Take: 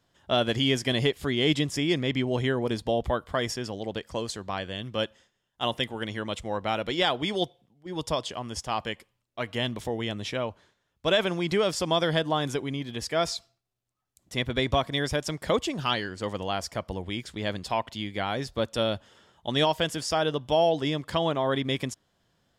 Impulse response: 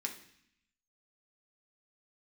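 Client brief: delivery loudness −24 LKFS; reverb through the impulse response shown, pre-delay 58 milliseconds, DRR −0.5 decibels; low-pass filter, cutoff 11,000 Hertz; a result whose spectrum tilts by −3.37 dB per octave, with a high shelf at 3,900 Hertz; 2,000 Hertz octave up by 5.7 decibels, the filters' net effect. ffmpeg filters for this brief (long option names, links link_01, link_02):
-filter_complex "[0:a]lowpass=11000,equalizer=frequency=2000:width_type=o:gain=5,highshelf=frequency=3900:gain=8,asplit=2[link_01][link_02];[1:a]atrim=start_sample=2205,adelay=58[link_03];[link_02][link_03]afir=irnorm=-1:irlink=0,volume=0dB[link_04];[link_01][link_04]amix=inputs=2:normalize=0,volume=-1dB"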